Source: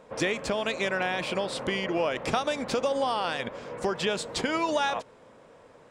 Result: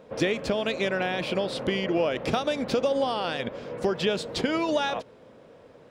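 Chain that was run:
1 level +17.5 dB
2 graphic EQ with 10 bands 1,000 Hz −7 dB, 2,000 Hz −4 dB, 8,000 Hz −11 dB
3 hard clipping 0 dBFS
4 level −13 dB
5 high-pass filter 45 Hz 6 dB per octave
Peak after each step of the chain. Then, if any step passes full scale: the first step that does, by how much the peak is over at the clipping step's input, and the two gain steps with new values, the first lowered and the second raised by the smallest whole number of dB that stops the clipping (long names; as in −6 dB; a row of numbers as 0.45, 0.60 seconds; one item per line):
+5.0, +3.0, 0.0, −13.0, −12.5 dBFS
step 1, 3.0 dB
step 1 +14.5 dB, step 4 −10 dB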